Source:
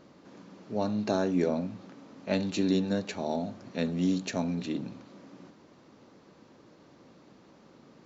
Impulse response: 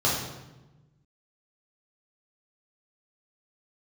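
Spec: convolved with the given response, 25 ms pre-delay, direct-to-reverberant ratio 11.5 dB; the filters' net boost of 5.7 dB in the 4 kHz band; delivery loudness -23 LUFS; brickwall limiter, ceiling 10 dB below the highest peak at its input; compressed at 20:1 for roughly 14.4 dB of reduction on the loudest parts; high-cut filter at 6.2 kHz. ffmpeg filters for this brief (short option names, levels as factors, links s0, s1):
-filter_complex "[0:a]lowpass=6200,equalizer=f=4000:t=o:g=7,acompressor=threshold=0.0158:ratio=20,alimiter=level_in=3.16:limit=0.0631:level=0:latency=1,volume=0.316,asplit=2[s0][s1];[1:a]atrim=start_sample=2205,adelay=25[s2];[s1][s2]afir=irnorm=-1:irlink=0,volume=0.0562[s3];[s0][s3]amix=inputs=2:normalize=0,volume=13.3"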